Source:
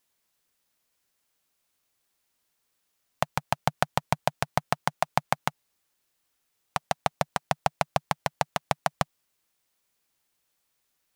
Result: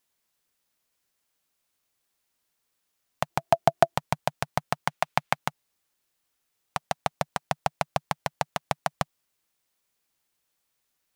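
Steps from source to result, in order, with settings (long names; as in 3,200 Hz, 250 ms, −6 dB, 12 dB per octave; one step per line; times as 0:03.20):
0:03.30–0:03.96: hollow resonant body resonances 350/670 Hz, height 17 dB, ringing for 55 ms
0:04.76–0:05.37: dynamic equaliser 2,500 Hz, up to +6 dB, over −43 dBFS, Q 0.76
level −1.5 dB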